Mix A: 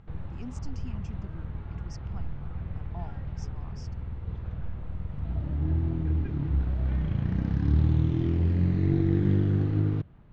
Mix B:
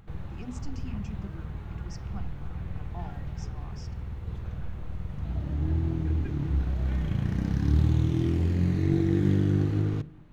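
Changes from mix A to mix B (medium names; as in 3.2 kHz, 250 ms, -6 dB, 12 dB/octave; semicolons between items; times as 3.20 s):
background: remove distance through air 190 m; reverb: on, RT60 0.70 s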